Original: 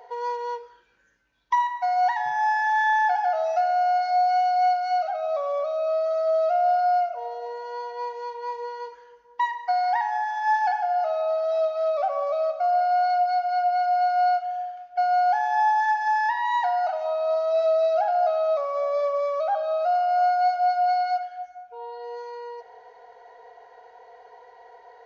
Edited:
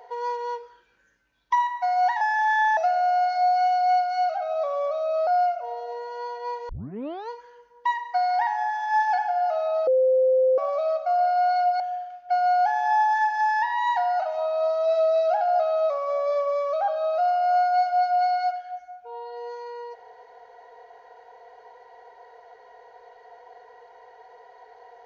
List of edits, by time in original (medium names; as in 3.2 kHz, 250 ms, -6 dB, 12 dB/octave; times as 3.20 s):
2.21–2.49 s: delete
3.05–3.50 s: delete
6.00–6.81 s: delete
8.23 s: tape start 0.61 s
11.41–12.12 s: bleep 518 Hz -16 dBFS
13.34–14.47 s: delete